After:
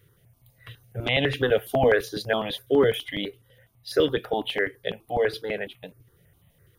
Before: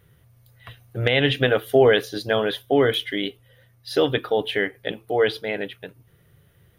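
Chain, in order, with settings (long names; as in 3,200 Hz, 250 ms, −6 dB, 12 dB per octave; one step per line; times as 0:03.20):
step-sequenced phaser 12 Hz 210–1,500 Hz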